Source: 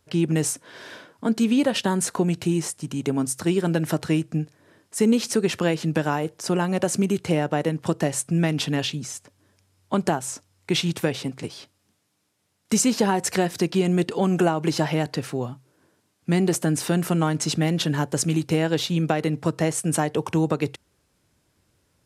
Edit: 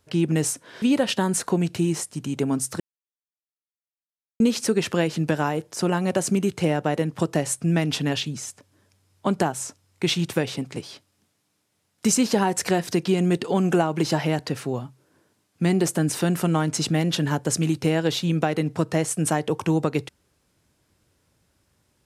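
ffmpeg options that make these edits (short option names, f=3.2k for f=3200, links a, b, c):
-filter_complex "[0:a]asplit=4[a][b][c][d];[a]atrim=end=0.822[e];[b]atrim=start=1.488:end=3.47,asetpts=PTS-STARTPTS,afade=t=out:st=1.978:d=0.004:c=hsin[f];[c]atrim=start=3.47:end=5.07,asetpts=PTS-STARTPTS,volume=0[g];[d]atrim=start=5.07,asetpts=PTS-STARTPTS,afade=t=in:d=0.004:c=hsin[h];[f][g][h]concat=n=3:v=0:a=1[i];[e][i]acrossfade=d=0.004:c1=hsin:c2=hsin"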